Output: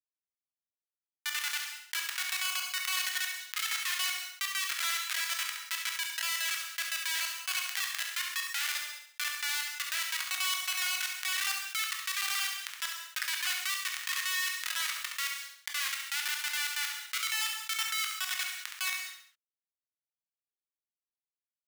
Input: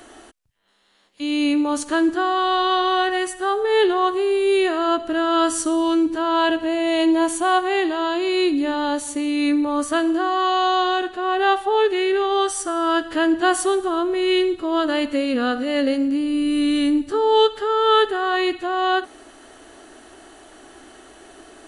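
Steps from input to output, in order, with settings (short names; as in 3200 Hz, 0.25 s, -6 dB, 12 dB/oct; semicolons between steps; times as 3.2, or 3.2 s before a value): random spectral dropouts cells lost 54%; LPF 2800 Hz 12 dB/oct; Schmitt trigger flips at -20 dBFS; inverse Chebyshev high-pass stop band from 270 Hz, stop band 80 dB; on a send: feedback echo 68 ms, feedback 20%, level -11.5 dB; on the sum: non-linear reverb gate 0.23 s falling, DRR 5.5 dB; fast leveller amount 50%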